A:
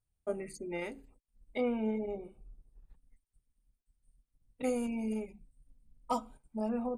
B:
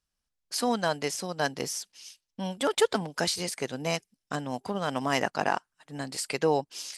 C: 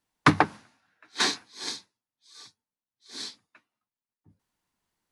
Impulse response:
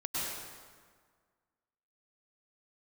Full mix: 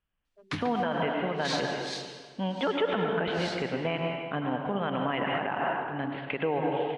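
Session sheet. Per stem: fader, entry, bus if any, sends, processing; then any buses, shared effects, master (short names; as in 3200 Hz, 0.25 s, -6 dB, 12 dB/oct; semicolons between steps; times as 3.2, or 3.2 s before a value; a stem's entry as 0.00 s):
-17.5 dB, 0.10 s, no send, spectral gate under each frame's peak -10 dB strong; one-sided clip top -32 dBFS; auto duck -16 dB, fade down 1.95 s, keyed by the second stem
-0.5 dB, 0.00 s, send -5 dB, steep low-pass 3300 Hz 72 dB/oct
-15.0 dB, 0.25 s, send -10.5 dB, weighting filter D; limiter -9 dBFS, peak gain reduction 9.5 dB; bell 75 Hz +15 dB 2.6 oct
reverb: on, RT60 1.7 s, pre-delay 93 ms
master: limiter -18.5 dBFS, peak gain reduction 11 dB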